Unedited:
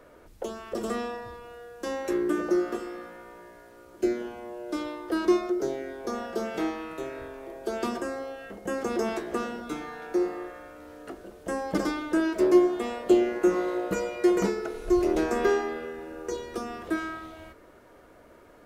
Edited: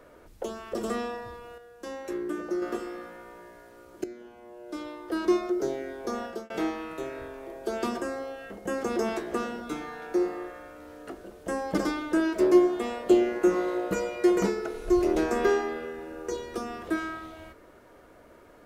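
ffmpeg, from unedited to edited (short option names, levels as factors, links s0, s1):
-filter_complex "[0:a]asplit=5[s0][s1][s2][s3][s4];[s0]atrim=end=1.582[s5];[s1]atrim=start=1.578:end=2.622,asetpts=PTS-STARTPTS,volume=0.501[s6];[s2]atrim=start=2.618:end=4.04,asetpts=PTS-STARTPTS,afade=t=out:st=1.418:d=0.004:c=hsin:silence=0.149624[s7];[s3]atrim=start=4.04:end=6.5,asetpts=PTS-STARTPTS,afade=t=in:d=1.55:silence=0.149624,afade=t=out:st=2.21:d=0.25[s8];[s4]atrim=start=6.5,asetpts=PTS-STARTPTS,afade=t=in:d=0.004:c=hsin[s9];[s5][s6]acrossfade=d=0.004:c1=hsin:c2=hsin[s10];[s7][s8][s9]concat=n=3:v=0:a=1[s11];[s10][s11]acrossfade=d=0.004:c1=hsin:c2=hsin"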